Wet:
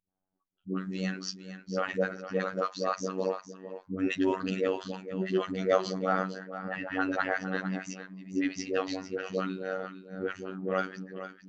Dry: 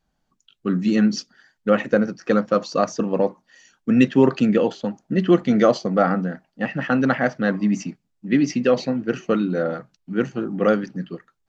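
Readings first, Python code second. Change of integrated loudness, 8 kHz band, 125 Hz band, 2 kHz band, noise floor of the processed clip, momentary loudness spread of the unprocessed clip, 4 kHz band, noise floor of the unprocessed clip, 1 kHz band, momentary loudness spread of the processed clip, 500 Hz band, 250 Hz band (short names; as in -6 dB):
-11.5 dB, n/a, -12.5 dB, -6.5 dB, -81 dBFS, 13 LU, -6.5 dB, -73 dBFS, -7.5 dB, 10 LU, -10.5 dB, -14.0 dB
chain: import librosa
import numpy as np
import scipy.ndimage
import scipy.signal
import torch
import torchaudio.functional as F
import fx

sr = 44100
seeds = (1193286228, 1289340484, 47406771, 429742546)

p1 = fx.env_lowpass(x, sr, base_hz=790.0, full_db=-16.5)
p2 = fx.dispersion(p1, sr, late='highs', ms=107.0, hz=440.0)
p3 = p2 + fx.echo_single(p2, sr, ms=456, db=-11.5, dry=0)
p4 = fx.robotise(p3, sr, hz=94.3)
p5 = fx.low_shelf(p4, sr, hz=290.0, db=-11.5)
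y = p5 * librosa.db_to_amplitude(-4.5)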